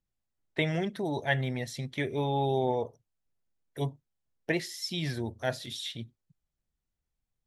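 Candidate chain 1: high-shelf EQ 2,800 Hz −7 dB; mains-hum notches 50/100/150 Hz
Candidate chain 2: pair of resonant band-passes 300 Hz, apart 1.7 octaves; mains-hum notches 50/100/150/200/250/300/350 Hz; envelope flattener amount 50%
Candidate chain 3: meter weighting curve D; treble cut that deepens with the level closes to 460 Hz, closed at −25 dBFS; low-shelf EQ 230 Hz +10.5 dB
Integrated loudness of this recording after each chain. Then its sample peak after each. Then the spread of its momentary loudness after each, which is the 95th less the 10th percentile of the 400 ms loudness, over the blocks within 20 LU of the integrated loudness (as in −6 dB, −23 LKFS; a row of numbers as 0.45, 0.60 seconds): −33.0, −38.5, −32.0 LKFS; −15.0, −25.0, −7.0 dBFS; 12, 16, 14 LU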